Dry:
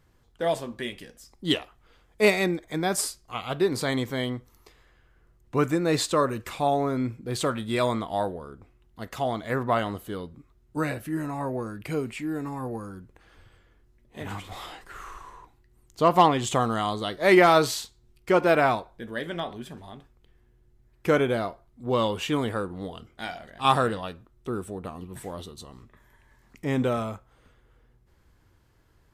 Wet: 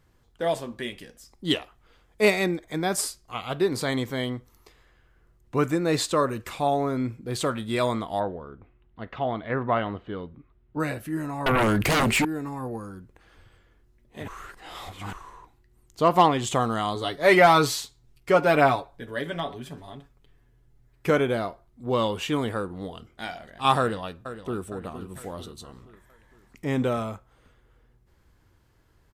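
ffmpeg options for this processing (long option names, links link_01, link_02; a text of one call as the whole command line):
ffmpeg -i in.wav -filter_complex "[0:a]asplit=3[link_01][link_02][link_03];[link_01]afade=type=out:start_time=8.19:duration=0.02[link_04];[link_02]lowpass=frequency=3200:width=0.5412,lowpass=frequency=3200:width=1.3066,afade=type=in:start_time=8.19:duration=0.02,afade=type=out:start_time=10.79:duration=0.02[link_05];[link_03]afade=type=in:start_time=10.79:duration=0.02[link_06];[link_04][link_05][link_06]amix=inputs=3:normalize=0,asettb=1/sr,asplit=3[link_07][link_08][link_09];[link_07]atrim=end=11.464[link_10];[link_08]atrim=start=11.46:end=12.25,asetpts=PTS-STARTPTS,afade=type=in:duration=0.004:curve=qsin,afade=type=out:start_time=0.786:duration=0.004:curve=qsin,aeval=exprs='0.126*sin(PI/2*5.62*val(0)/0.126)':channel_layout=same[link_11];[link_09]atrim=start=12.246[link_12];[link_10][link_11]acrossfade=duration=0.004:curve1=hsin:curve2=qsin[link_13];[link_13][link_12]acrossfade=duration=0.004:curve1=qsin:curve2=hsin,asettb=1/sr,asplit=3[link_14][link_15][link_16];[link_14]atrim=end=16.954[link_17];[link_15]atrim=start=16.95:end=21.1,asetpts=PTS-STARTPTS,afade=type=in:duration=0.004:curve=qsin,afade=type=out:start_time=4.146:duration=0.004:curve=qsin,aecho=1:1:7.1:0.65,atrim=end_sample=183015[link_18];[link_16]atrim=start=21.096[link_19];[link_17][link_18]acrossfade=duration=0.004:curve1=hsin:curve2=qsin[link_20];[link_20][link_19]acrossfade=duration=0.004:curve1=qsin:curve2=hsin,asplit=2[link_21][link_22];[link_22]afade=type=in:start_time=23.79:duration=0.01,afade=type=out:start_time=24.67:duration=0.01,aecho=0:1:460|920|1380|1840|2300:0.251189|0.125594|0.0627972|0.0313986|0.0156993[link_23];[link_21][link_23]amix=inputs=2:normalize=0,asplit=3[link_24][link_25][link_26];[link_24]atrim=end=14.282[link_27];[link_25]atrim=start=14.278:end=15.132,asetpts=PTS-STARTPTS,areverse[link_28];[link_26]atrim=start=15.128[link_29];[link_27][link_28]acrossfade=duration=0.004:curve1=hsin:curve2=hsin[link_30];[link_30][link_29]acrossfade=duration=0.004:curve1=hsin:curve2=hsin" out.wav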